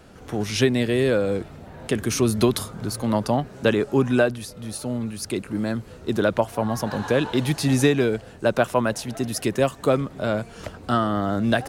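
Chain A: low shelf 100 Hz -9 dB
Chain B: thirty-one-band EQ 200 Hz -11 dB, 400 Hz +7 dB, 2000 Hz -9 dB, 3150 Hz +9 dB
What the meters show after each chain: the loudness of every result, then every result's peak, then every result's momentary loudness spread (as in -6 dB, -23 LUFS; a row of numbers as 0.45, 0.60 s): -24.5, -22.0 LUFS; -6.5, -3.5 dBFS; 10, 12 LU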